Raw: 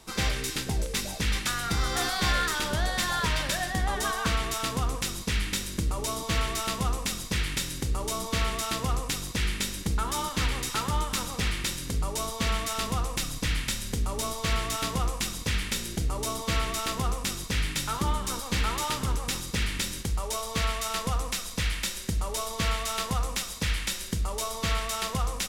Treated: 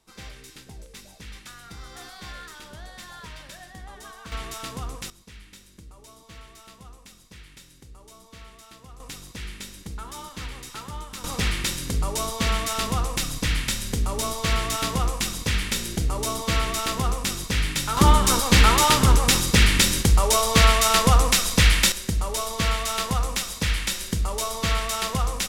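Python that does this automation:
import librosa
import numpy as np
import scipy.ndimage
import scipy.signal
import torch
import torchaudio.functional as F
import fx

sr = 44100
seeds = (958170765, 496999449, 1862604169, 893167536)

y = fx.gain(x, sr, db=fx.steps((0.0, -14.0), (4.32, -5.0), (5.1, -18.0), (9.0, -8.0), (11.24, 4.0), (17.97, 12.0), (21.92, 4.0)))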